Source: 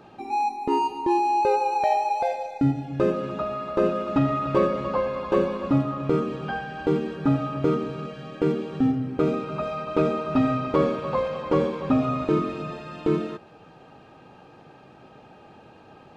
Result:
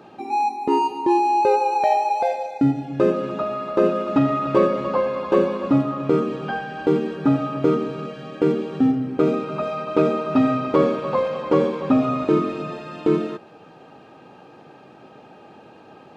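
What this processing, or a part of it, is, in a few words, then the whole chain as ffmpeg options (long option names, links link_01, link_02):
filter by subtraction: -filter_complex "[0:a]asplit=2[link_01][link_02];[link_02]lowpass=280,volume=-1[link_03];[link_01][link_03]amix=inputs=2:normalize=0,volume=2.5dB"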